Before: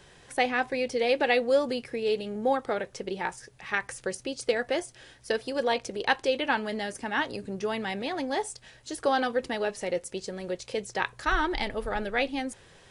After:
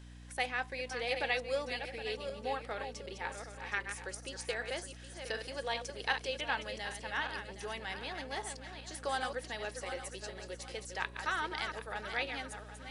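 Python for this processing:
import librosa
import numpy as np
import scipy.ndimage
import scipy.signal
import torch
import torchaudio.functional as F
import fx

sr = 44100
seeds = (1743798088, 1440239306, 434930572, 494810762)

y = fx.reverse_delay_fb(x, sr, ms=383, feedback_pct=55, wet_db=-7.5)
y = fx.highpass(y, sr, hz=1100.0, slope=6)
y = fx.add_hum(y, sr, base_hz=60, snr_db=12)
y = y * librosa.db_to_amplitude(-5.5)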